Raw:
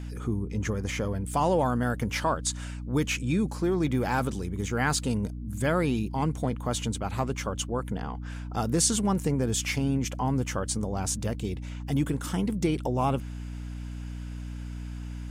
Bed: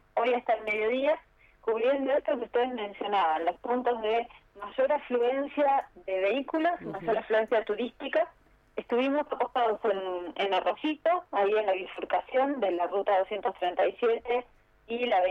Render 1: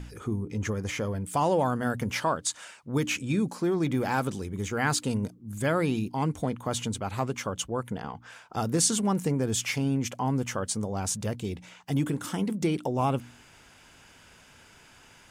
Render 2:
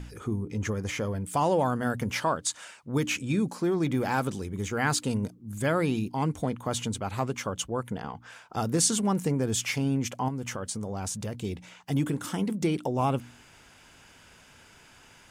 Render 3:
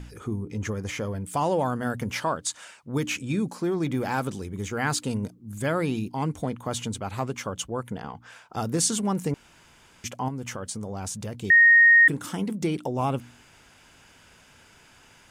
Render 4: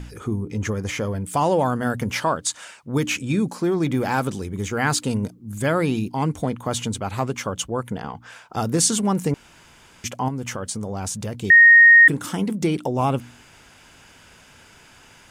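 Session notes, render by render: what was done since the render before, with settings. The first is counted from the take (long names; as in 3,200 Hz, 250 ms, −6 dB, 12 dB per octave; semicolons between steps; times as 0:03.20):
hum removal 60 Hz, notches 5
0:10.28–0:11.40: downward compressor, threshold −29 dBFS
0:09.34–0:10.04: fill with room tone; 0:11.50–0:12.08: beep over 1,860 Hz −11.5 dBFS
level +5 dB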